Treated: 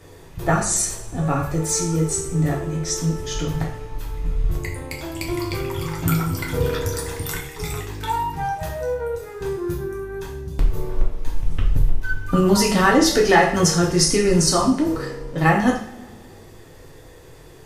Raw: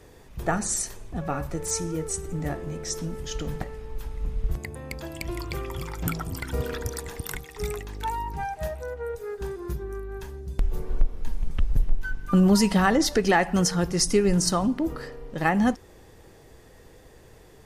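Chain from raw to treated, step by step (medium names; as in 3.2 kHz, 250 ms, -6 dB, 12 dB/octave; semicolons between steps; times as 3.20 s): two-slope reverb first 0.5 s, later 1.9 s, from -21 dB, DRR -2 dB; trim +2.5 dB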